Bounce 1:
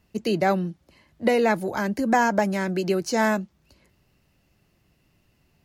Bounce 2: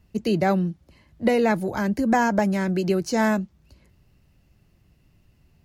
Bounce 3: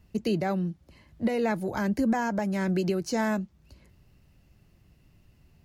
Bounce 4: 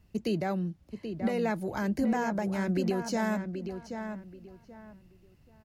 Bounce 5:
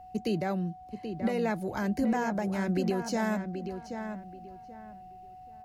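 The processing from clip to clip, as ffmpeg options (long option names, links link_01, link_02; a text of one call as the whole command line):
ffmpeg -i in.wav -af "lowshelf=frequency=170:gain=11.5,volume=-1.5dB" out.wav
ffmpeg -i in.wav -af "alimiter=limit=-18dB:level=0:latency=1:release=493" out.wav
ffmpeg -i in.wav -filter_complex "[0:a]asplit=2[link_01][link_02];[link_02]adelay=781,lowpass=frequency=2700:poles=1,volume=-7.5dB,asplit=2[link_03][link_04];[link_04]adelay=781,lowpass=frequency=2700:poles=1,volume=0.25,asplit=2[link_05][link_06];[link_06]adelay=781,lowpass=frequency=2700:poles=1,volume=0.25[link_07];[link_01][link_03][link_05][link_07]amix=inputs=4:normalize=0,volume=-3dB" out.wav
ffmpeg -i in.wav -af "aeval=exprs='val(0)+0.00501*sin(2*PI*740*n/s)':channel_layout=same" out.wav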